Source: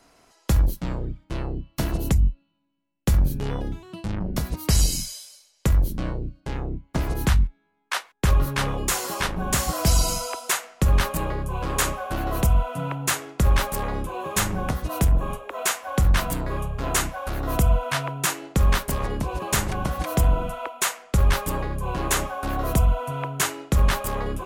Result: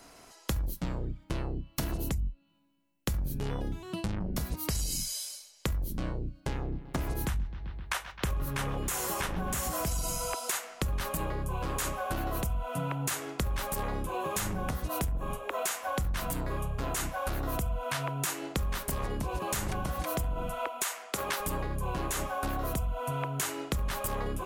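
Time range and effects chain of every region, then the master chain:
6.37–10.34 dynamic EQ 4500 Hz, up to -6 dB, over -46 dBFS, Q 2.2 + analogue delay 0.13 s, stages 4096, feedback 62%, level -19 dB
20.83–21.4 HPF 350 Hz + notch 510 Hz
whole clip: high shelf 7500 Hz +5.5 dB; limiter -16 dBFS; compressor 5:1, threshold -33 dBFS; gain +3 dB

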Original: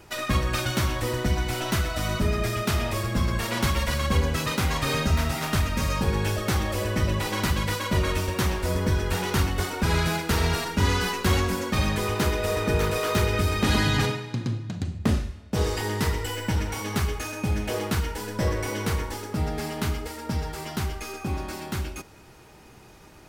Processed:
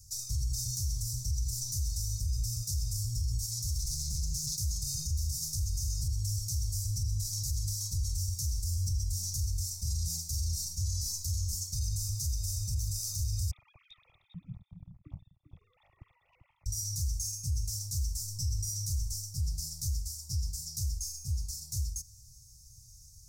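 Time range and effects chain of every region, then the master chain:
3.78–4.56 comb 5.9 ms, depth 98% + Doppler distortion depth 0.53 ms
13.51–16.66 sine-wave speech + air absorption 62 m + echo 0.396 s -9.5 dB
whole clip: inverse Chebyshev band-stop 220–3200 Hz, stop band 40 dB; bell 5600 Hz +10 dB 0.95 oct; limiter -24.5 dBFS

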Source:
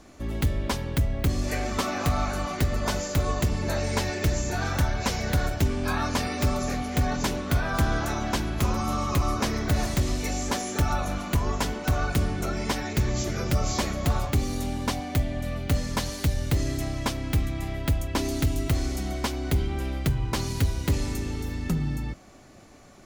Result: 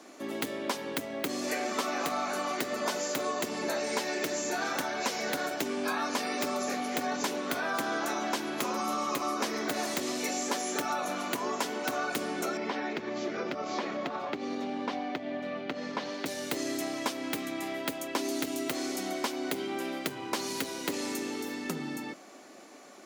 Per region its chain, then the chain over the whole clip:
12.57–16.26 air absorption 230 m + compressor 4:1, threshold -25 dBFS
whole clip: HPF 260 Hz 24 dB/oct; compressor 3:1, threshold -31 dBFS; gain +2 dB

